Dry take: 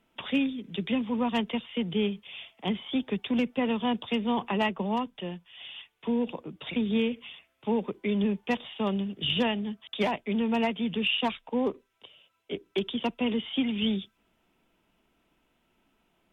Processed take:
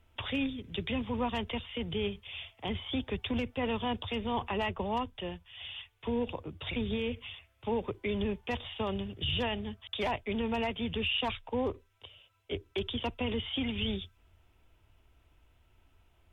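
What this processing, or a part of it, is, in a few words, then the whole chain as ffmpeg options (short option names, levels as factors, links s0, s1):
car stereo with a boomy subwoofer: -af "lowshelf=f=130:t=q:w=3:g=13,alimiter=limit=0.0668:level=0:latency=1:release=23"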